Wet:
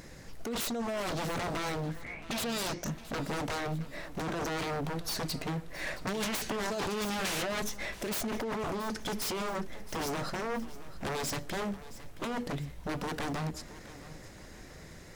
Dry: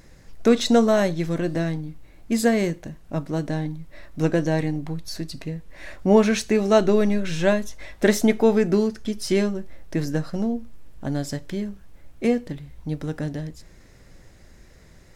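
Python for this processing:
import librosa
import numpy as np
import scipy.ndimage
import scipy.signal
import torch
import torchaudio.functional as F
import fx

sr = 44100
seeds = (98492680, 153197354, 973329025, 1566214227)

y = fx.low_shelf(x, sr, hz=82.0, db=-9.5)
y = fx.over_compress(y, sr, threshold_db=-26.0, ratio=-1.0)
y = fx.lowpass_res(y, sr, hz=fx.line((1.88, 1600.0), (2.89, 6400.0)), q=7.7, at=(1.88, 2.89), fade=0.02)
y = 10.0 ** (-29.0 / 20.0) * (np.abs((y / 10.0 ** (-29.0 / 20.0) + 3.0) % 4.0 - 2.0) - 1.0)
y = fx.echo_feedback(y, sr, ms=671, feedback_pct=43, wet_db=-16.5)
y = fx.band_squash(y, sr, depth_pct=100, at=(6.07, 7.62))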